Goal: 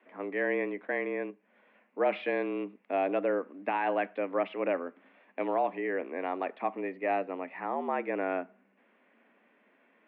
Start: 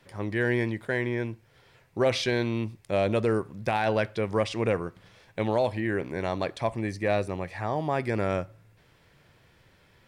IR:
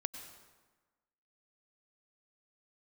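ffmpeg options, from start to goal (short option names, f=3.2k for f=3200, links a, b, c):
-filter_complex "[0:a]asettb=1/sr,asplit=3[a][b][c];[a]atrim=end=1.304[d];[b]atrim=start=1.3:end=1.98,asetpts=PTS-STARTPTS,afade=t=in:d=0.004:c=qsin,afade=t=out:st=0.676:d=0.004:c=qsin,acompressor=threshold=-43dB:ratio=3[e];[c]atrim=start=1.976[f];[d][e]acrossfade=d=0.004:c1=hsin:c2=qsin[g];[g][f]acrossfade=d=0.004:c1=qsin:c2=hsin,highpass=f=150:t=q:w=0.5412,highpass=f=150:t=q:w=1.307,lowpass=f=2.6k:t=q:w=0.5176,lowpass=f=2.6k:t=q:w=0.7071,lowpass=f=2.6k:t=q:w=1.932,afreqshift=87,volume=-3.5dB"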